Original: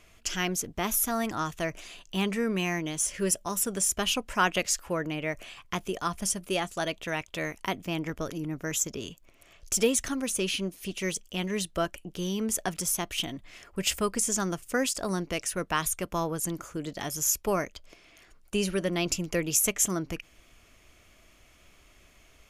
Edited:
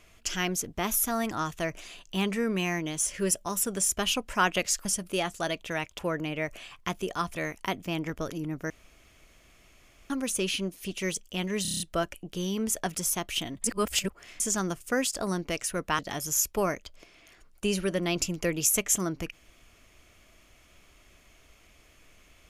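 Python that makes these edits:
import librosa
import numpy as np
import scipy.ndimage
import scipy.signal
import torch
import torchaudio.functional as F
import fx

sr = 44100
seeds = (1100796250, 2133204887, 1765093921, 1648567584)

y = fx.edit(x, sr, fx.move(start_s=6.22, length_s=1.14, to_s=4.85),
    fx.room_tone_fill(start_s=8.7, length_s=1.4),
    fx.stutter(start_s=11.62, slice_s=0.03, count=7),
    fx.reverse_span(start_s=13.46, length_s=0.76),
    fx.cut(start_s=15.81, length_s=1.08), tone=tone)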